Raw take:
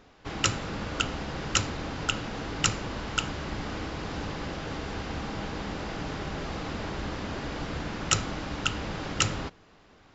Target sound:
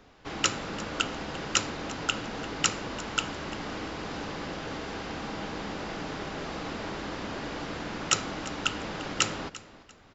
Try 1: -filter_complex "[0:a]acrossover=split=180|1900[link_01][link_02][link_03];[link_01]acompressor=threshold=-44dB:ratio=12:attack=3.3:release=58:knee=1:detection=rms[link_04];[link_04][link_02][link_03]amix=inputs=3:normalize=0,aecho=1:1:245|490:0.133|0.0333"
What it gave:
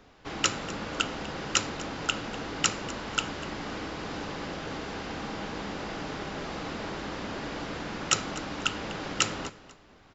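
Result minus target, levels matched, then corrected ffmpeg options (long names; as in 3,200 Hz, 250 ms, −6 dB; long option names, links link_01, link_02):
echo 99 ms early
-filter_complex "[0:a]acrossover=split=180|1900[link_01][link_02][link_03];[link_01]acompressor=threshold=-44dB:ratio=12:attack=3.3:release=58:knee=1:detection=rms[link_04];[link_04][link_02][link_03]amix=inputs=3:normalize=0,aecho=1:1:344|688:0.133|0.0333"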